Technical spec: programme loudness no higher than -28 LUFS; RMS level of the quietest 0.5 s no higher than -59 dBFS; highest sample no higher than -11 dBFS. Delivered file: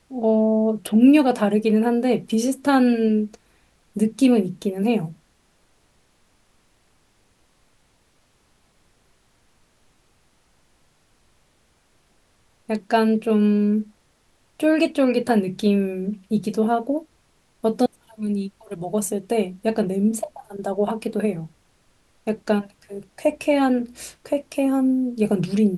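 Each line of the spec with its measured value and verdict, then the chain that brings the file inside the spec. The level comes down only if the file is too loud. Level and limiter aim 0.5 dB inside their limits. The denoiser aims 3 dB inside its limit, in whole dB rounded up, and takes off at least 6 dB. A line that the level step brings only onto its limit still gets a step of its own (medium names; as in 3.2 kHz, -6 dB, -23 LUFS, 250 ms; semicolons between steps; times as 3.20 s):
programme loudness -21.5 LUFS: fail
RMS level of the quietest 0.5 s -62 dBFS: pass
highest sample -4.5 dBFS: fail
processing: trim -7 dB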